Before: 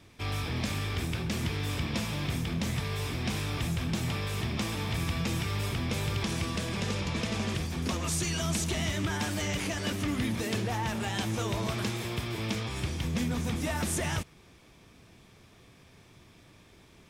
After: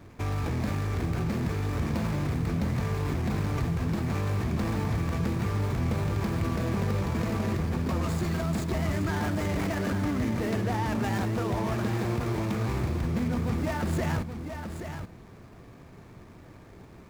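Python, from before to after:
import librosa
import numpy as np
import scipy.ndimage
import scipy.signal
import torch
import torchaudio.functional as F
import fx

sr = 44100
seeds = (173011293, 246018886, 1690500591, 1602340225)

p1 = scipy.ndimage.median_filter(x, 15, mode='constant')
p2 = fx.over_compress(p1, sr, threshold_db=-37.0, ratio=-1.0)
p3 = p1 + F.gain(torch.from_numpy(p2), -1.0).numpy()
y = p3 + 10.0 ** (-8.0 / 20.0) * np.pad(p3, (int(827 * sr / 1000.0), 0))[:len(p3)]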